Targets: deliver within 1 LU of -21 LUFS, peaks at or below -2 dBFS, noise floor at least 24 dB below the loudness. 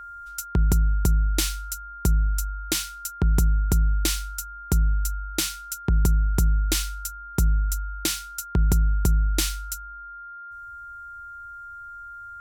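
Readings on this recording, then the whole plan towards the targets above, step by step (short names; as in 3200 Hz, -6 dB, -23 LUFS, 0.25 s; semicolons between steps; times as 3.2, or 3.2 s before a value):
steady tone 1400 Hz; tone level -37 dBFS; loudness -25.0 LUFS; peak -8.0 dBFS; loudness target -21.0 LUFS
-> notch 1400 Hz, Q 30; gain +4 dB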